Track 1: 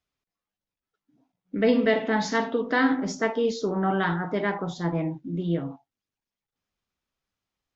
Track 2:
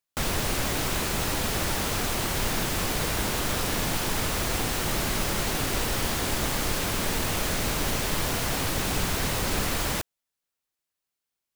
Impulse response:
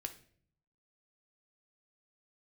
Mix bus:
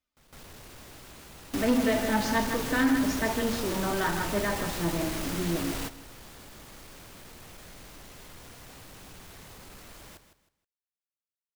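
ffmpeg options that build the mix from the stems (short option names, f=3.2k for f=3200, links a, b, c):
-filter_complex "[0:a]aecho=1:1:3.3:0.43,flanger=delay=3.6:depth=4.6:regen=53:speed=0.88:shape=triangular,volume=1dB,asplit=3[a][b][c];[b]volume=-8.5dB[d];[1:a]asoftclip=type=tanh:threshold=-24.5dB,volume=-4.5dB,asplit=2[e][f];[f]volume=-14dB[g];[c]apad=whole_len=509742[h];[e][h]sidechaingate=range=-27dB:threshold=-53dB:ratio=16:detection=peak[i];[d][g]amix=inputs=2:normalize=0,aecho=0:1:158|316|474|632:1|0.28|0.0784|0.022[j];[a][i][j]amix=inputs=3:normalize=0,asoftclip=type=tanh:threshold=-17dB"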